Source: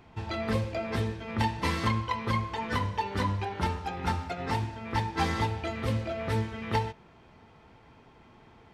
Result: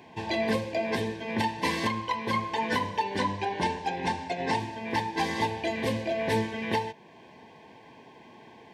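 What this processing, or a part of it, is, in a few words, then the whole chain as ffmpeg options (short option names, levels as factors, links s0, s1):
PA system with an anti-feedback notch: -filter_complex "[0:a]highpass=200,asuperstop=centerf=1300:order=12:qfactor=3.5,alimiter=limit=0.0708:level=0:latency=1:release=459,asettb=1/sr,asplit=3[s0][s1][s2];[s0]atrim=end=3.174[s3];[s1]atrim=start=3.17:end=4.6,asetpts=PTS-STARTPTS,afade=t=in:d=0.004:c=qsin,afade=t=out:st=1.426:d=0.004:c=qsin,lowpass=f=9500:w=0.5412,lowpass=f=9500:w=1.3066[s4];[s2]atrim=start=4.596[s5];[s3][s4]acrossfade=d=0.004:c1=hsin:c2=qsin[s6];[s6][s5]acrossfade=d=0.004:c1=qsin:c2=hsin,volume=2.11"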